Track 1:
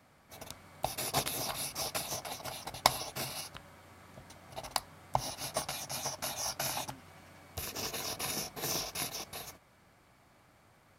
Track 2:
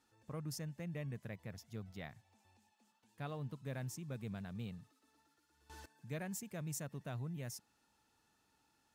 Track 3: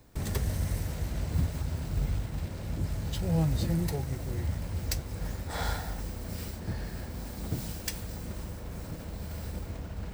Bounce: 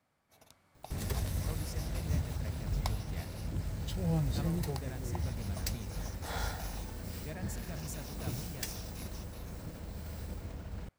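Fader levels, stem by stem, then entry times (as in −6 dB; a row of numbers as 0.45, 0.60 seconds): −14.0, −1.5, −4.5 decibels; 0.00, 1.15, 0.75 seconds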